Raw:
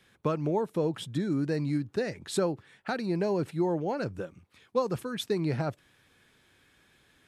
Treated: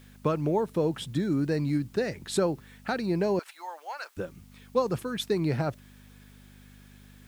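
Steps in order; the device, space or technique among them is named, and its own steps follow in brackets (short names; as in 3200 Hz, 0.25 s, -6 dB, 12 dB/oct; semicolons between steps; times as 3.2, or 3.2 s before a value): video cassette with head-switching buzz (buzz 50 Hz, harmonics 5, -55 dBFS -2 dB/oct; white noise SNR 35 dB); 3.39–4.17 HPF 870 Hz 24 dB/oct; gain +2 dB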